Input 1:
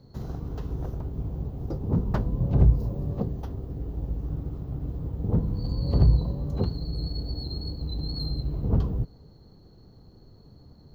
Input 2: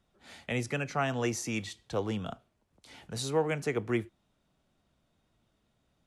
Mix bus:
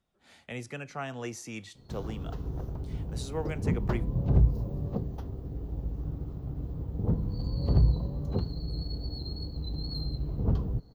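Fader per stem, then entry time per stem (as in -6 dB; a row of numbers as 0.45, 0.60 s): -3.5, -6.5 dB; 1.75, 0.00 s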